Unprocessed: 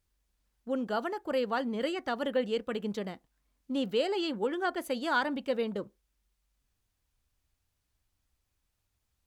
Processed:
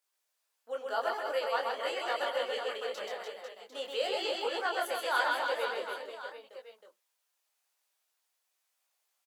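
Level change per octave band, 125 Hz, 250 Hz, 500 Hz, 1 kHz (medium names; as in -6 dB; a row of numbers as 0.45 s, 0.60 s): under -30 dB, -18.0 dB, -2.0 dB, +2.0 dB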